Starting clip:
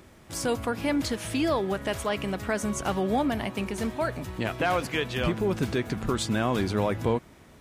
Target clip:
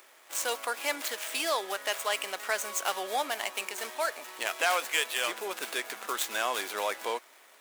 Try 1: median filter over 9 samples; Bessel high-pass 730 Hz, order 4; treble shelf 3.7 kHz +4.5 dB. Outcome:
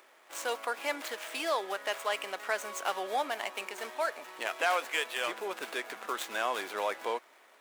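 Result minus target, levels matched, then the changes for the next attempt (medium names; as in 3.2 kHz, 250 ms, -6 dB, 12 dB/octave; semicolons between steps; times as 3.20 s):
8 kHz band -6.0 dB
change: treble shelf 3.7 kHz +15.5 dB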